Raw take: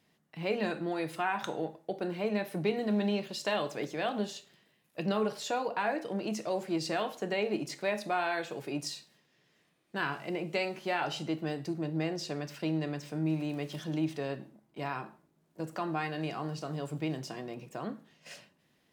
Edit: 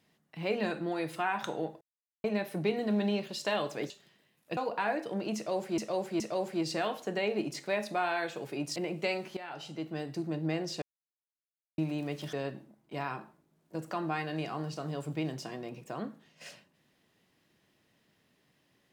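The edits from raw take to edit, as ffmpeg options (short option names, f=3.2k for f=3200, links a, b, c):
-filter_complex "[0:a]asplit=12[a][b][c][d][e][f][g][h][i][j][k][l];[a]atrim=end=1.81,asetpts=PTS-STARTPTS,afade=t=out:st=1.806:d=0.004:c=hsin[m];[b]atrim=start=1.81:end=2.24,asetpts=PTS-STARTPTS,volume=0[n];[c]atrim=start=2.24:end=3.902,asetpts=PTS-STARTPTS,afade=t=in:d=0.004:c=hsin[o];[d]atrim=start=4.368:end=5.042[p];[e]atrim=start=5.558:end=6.772[q];[f]atrim=start=6.348:end=6.772[r];[g]atrim=start=6.348:end=8.912[s];[h]atrim=start=10.268:end=10.88,asetpts=PTS-STARTPTS,afade=t=out:st=0.608:d=0.004:c=hsin:silence=0.177828[t];[i]atrim=start=10.88:end=12.33,asetpts=PTS-STARTPTS,afade=t=in:d=0.88:silence=0.177828,afade=t=out:st=1.446:d=0.004:c=hsin[u];[j]atrim=start=12.33:end=13.29,asetpts=PTS-STARTPTS,volume=0[v];[k]atrim=start=13.29:end=13.842,asetpts=PTS-STARTPTS,afade=t=in:d=0.004:c=hsin[w];[l]atrim=start=14.178[x];[m][n][o]concat=n=3:v=0:a=1[y];[y][p]acrossfade=d=0.004:c1=hsin:c2=hsin[z];[z][q]acrossfade=d=0.004:c1=hsin:c2=hsin[aa];[aa][r]acrossfade=d=0.004:c1=hsin:c2=hsin[ab];[ab][s]acrossfade=d=0.004:c1=hsin:c2=hsin[ac];[t][u][v][w]concat=n=4:v=0:a=1[ad];[ac][ad]acrossfade=d=0.004:c1=hsin:c2=hsin[ae];[ae][x]acrossfade=d=0.004:c1=hsin:c2=hsin"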